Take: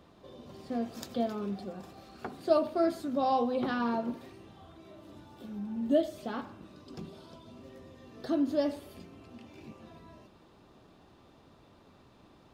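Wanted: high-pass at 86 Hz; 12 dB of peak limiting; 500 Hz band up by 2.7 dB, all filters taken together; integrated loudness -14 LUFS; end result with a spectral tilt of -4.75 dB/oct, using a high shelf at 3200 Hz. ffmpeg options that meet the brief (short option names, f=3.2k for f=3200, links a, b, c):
-af "highpass=86,equalizer=f=500:t=o:g=3.5,highshelf=f=3.2k:g=3.5,volume=20.5dB,alimiter=limit=-2.5dB:level=0:latency=1"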